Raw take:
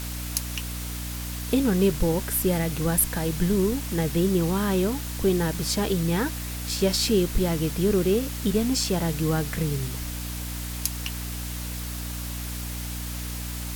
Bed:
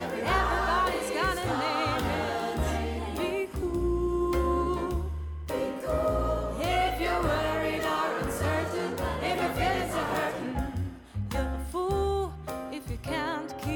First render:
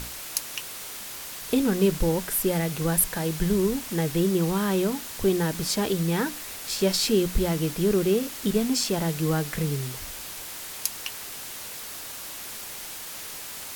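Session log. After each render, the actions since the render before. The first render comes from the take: notches 60/120/180/240/300 Hz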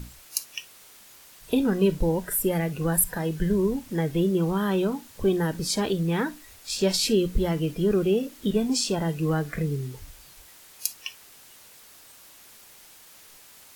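noise print and reduce 13 dB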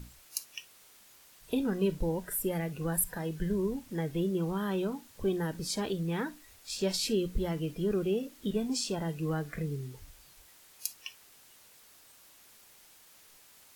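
gain -7.5 dB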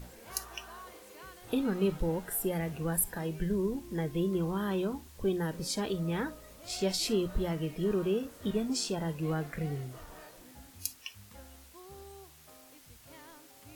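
add bed -22.5 dB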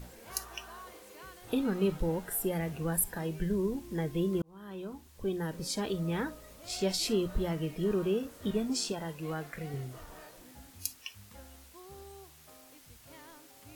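4.42–6.2 fade in equal-power; 8.92–9.74 low shelf 400 Hz -7.5 dB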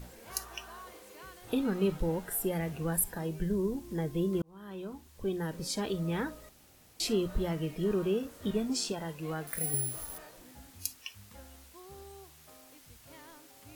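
3.05–4.33 dynamic EQ 2300 Hz, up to -4 dB, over -56 dBFS, Q 0.9; 6.49–7 room tone; 9.47–10.18 careless resampling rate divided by 4×, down none, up zero stuff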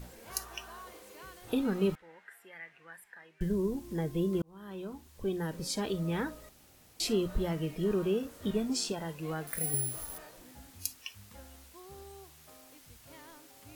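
1.95–3.41 band-pass 1900 Hz, Q 3.6

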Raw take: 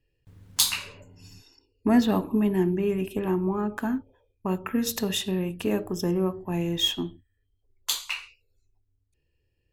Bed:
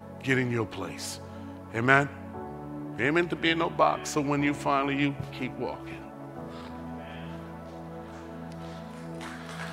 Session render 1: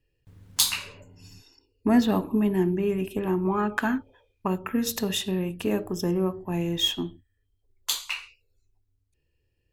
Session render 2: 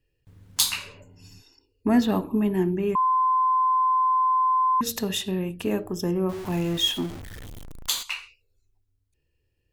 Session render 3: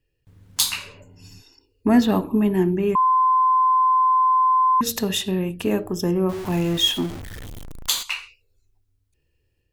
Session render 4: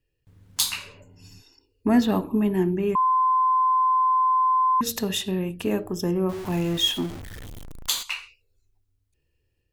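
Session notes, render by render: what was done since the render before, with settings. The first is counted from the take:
3.45–4.48 bell 2500 Hz +11.5 dB 2.7 oct
2.95–4.81 bleep 1030 Hz -18 dBFS; 6.29–8.03 zero-crossing step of -33 dBFS
AGC gain up to 4 dB
gain -3 dB

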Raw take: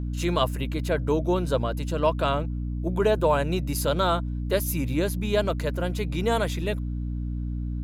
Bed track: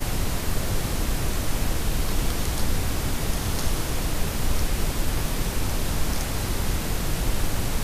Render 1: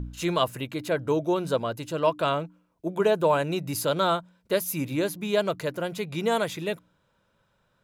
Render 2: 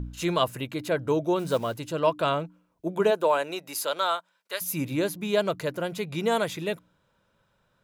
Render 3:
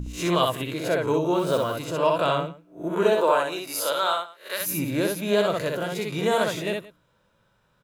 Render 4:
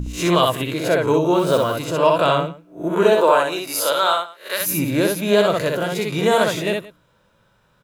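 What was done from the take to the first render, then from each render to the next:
de-hum 60 Hz, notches 5
1.39–1.79 block floating point 5-bit; 3.1–4.6 HPF 330 Hz -> 1100 Hz
spectral swells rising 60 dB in 0.33 s; tapped delay 63/173 ms -3/-19.5 dB
gain +6 dB; limiter -3 dBFS, peak gain reduction 1.5 dB

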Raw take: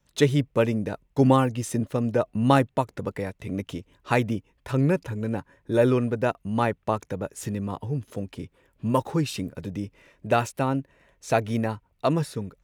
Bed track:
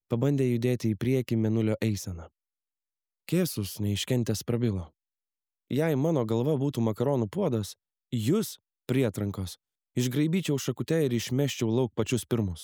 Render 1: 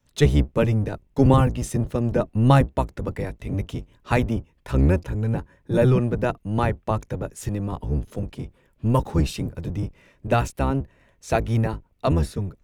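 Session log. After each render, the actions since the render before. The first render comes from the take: octaver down 1 oct, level +3 dB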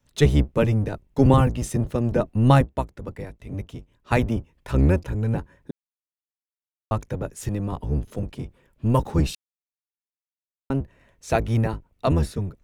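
2.55–4.12 upward expander, over -28 dBFS; 5.71–6.91 mute; 9.35–10.7 mute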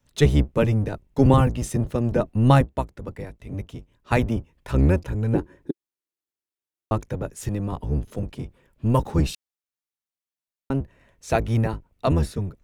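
5.32–7 bell 340 Hz +15 dB -> +8 dB 0.72 oct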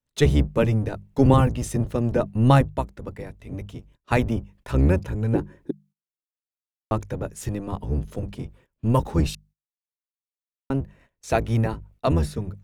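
notches 50/100/150/200 Hz; gate -52 dBFS, range -18 dB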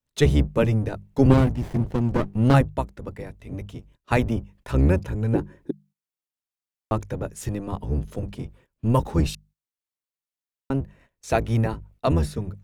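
1.3–2.54 running maximum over 33 samples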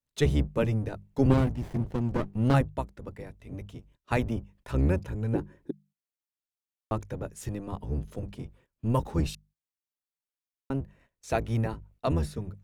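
gain -6 dB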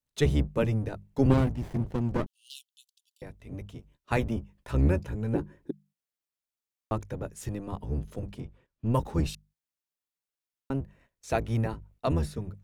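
2.26–3.22 steep high-pass 2900 Hz 96 dB/oct; 3.77–5.56 doubler 14 ms -12 dB; 8.4–8.94 air absorption 74 m

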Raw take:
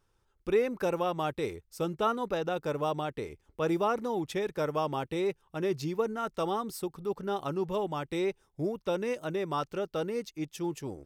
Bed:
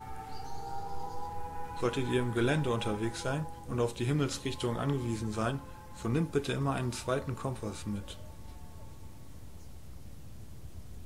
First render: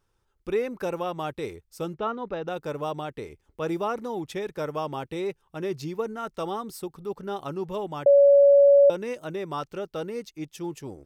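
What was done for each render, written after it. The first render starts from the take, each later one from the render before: 1.94–2.48 air absorption 210 m; 8.06–8.9 bleep 564 Hz -12 dBFS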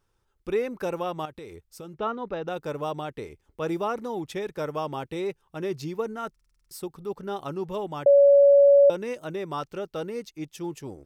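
1.25–1.97 compressor 5:1, threshold -38 dBFS; 6.31 stutter in place 0.05 s, 8 plays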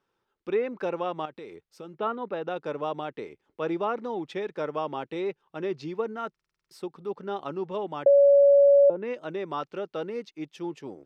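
treble ducked by the level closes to 710 Hz, closed at -15.5 dBFS; three-band isolator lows -23 dB, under 160 Hz, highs -16 dB, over 4700 Hz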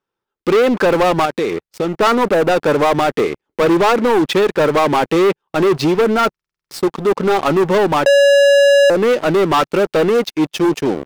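in parallel at 0 dB: compressor, threshold -27 dBFS, peak gain reduction 11 dB; on the sum: sample leveller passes 5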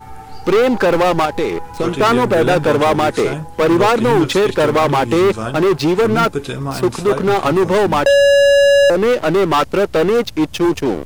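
add bed +8.5 dB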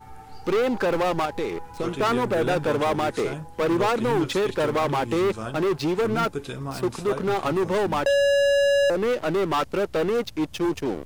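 gain -9.5 dB

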